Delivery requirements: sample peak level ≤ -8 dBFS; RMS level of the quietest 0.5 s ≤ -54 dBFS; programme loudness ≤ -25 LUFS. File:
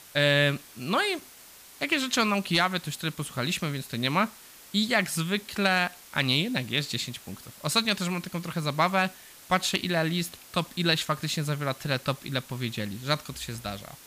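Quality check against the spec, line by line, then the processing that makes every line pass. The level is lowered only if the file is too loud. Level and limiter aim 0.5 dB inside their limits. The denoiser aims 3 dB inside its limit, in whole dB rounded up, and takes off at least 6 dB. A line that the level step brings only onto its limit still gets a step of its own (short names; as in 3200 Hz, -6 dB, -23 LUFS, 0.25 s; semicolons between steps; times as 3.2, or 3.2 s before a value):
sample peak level -11.0 dBFS: OK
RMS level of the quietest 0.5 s -50 dBFS: fail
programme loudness -27.5 LUFS: OK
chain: denoiser 7 dB, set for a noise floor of -50 dBFS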